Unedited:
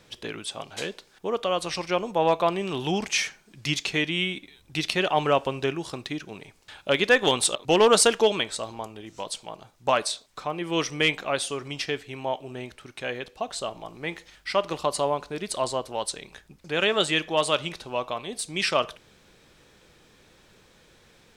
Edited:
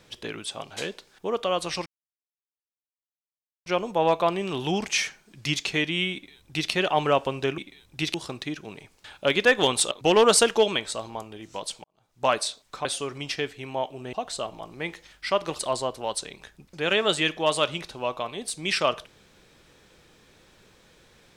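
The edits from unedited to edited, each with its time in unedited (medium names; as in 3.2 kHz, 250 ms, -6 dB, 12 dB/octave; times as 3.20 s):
1.86 s: insert silence 1.80 s
4.34–4.90 s: copy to 5.78 s
9.48–9.92 s: fade in quadratic
10.49–11.35 s: delete
12.63–13.36 s: delete
14.82–15.50 s: delete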